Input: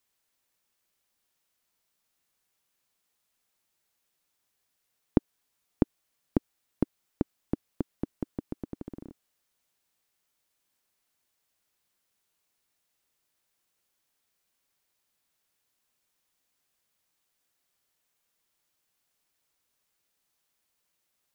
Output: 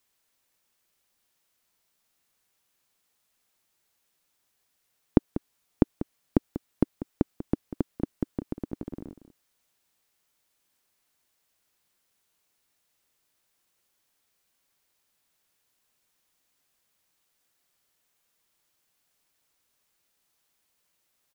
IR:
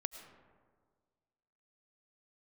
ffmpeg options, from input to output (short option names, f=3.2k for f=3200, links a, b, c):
-filter_complex "[0:a]asplit=2[a][b];[b]adelay=192.4,volume=-13dB,highshelf=f=4k:g=-4.33[c];[a][c]amix=inputs=2:normalize=0,volume=3.5dB"